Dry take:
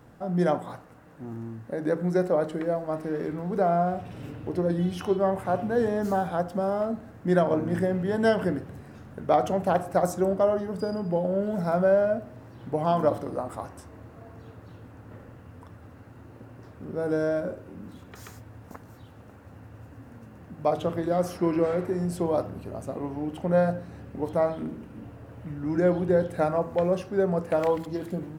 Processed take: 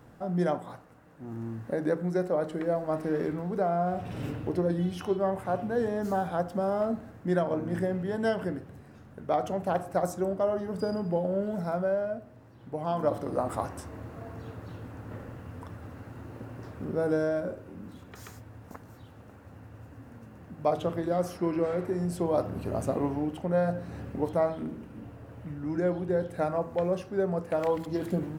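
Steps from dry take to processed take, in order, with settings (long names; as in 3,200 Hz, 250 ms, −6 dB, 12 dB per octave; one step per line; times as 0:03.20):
speech leveller 0.5 s
level −3 dB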